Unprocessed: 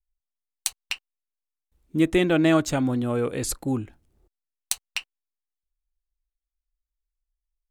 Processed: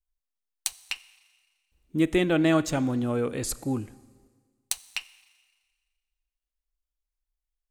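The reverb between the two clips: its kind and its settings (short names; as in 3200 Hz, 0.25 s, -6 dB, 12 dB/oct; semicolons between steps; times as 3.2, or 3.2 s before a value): Schroeder reverb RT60 1.6 s, combs from 29 ms, DRR 18 dB; gain -2.5 dB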